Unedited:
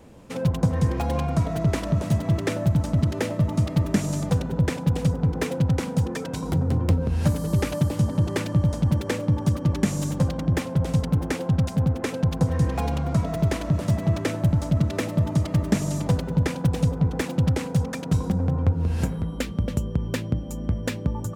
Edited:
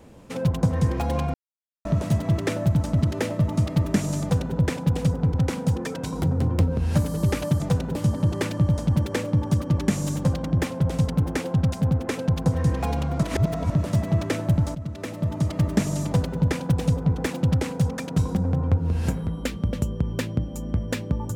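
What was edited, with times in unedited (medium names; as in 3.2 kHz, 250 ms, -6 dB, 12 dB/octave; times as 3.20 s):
1.34–1.85 s: mute
4.21–4.56 s: copy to 7.90 s
5.34–5.64 s: delete
13.18–13.65 s: reverse
14.70–15.57 s: fade in, from -14 dB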